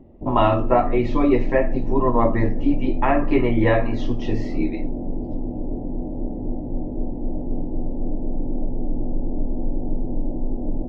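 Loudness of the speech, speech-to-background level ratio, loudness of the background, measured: -21.5 LUFS, 8.0 dB, -29.5 LUFS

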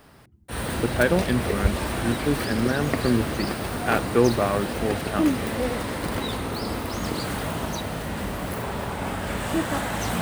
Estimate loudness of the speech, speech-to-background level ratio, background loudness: -26.0 LUFS, 2.0 dB, -28.0 LUFS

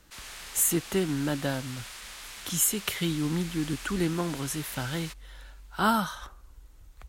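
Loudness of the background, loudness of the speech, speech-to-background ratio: -41.0 LUFS, -29.0 LUFS, 12.0 dB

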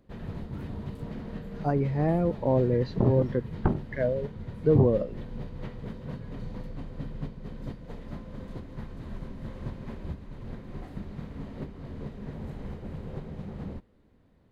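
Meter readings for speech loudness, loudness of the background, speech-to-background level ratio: -26.5 LUFS, -40.0 LUFS, 13.5 dB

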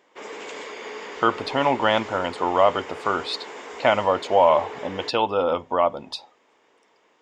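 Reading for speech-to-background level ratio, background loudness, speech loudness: 14.0 dB, -36.5 LUFS, -22.5 LUFS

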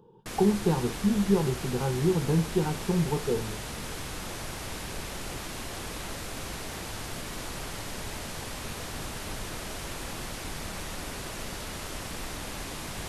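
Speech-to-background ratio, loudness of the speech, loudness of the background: 9.5 dB, -27.5 LUFS, -37.0 LUFS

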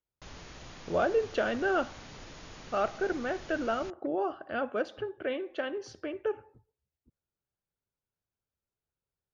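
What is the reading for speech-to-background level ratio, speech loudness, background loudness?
15.5 dB, -32.5 LUFS, -48.0 LUFS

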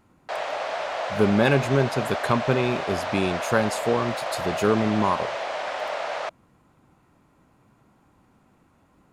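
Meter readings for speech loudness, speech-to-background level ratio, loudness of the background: -24.5 LUFS, 5.0 dB, -29.5 LUFS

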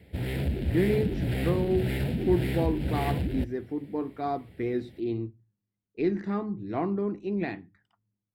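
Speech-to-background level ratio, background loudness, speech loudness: -0.5 dB, -30.5 LUFS, -31.0 LUFS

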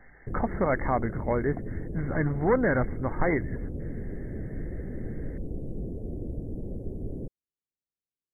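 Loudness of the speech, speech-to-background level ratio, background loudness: -28.5 LUFS, 9.0 dB, -37.5 LUFS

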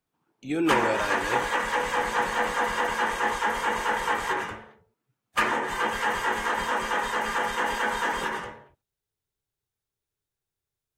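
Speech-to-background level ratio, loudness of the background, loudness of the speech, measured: -3.0 dB, -26.5 LUFS, -29.5 LUFS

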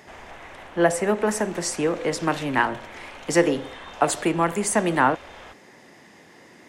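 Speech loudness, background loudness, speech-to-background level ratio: -23.5 LUFS, -42.0 LUFS, 18.5 dB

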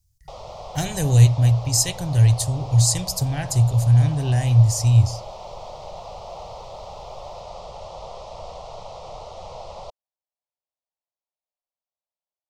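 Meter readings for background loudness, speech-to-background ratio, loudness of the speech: -38.0 LUFS, 19.5 dB, -18.5 LUFS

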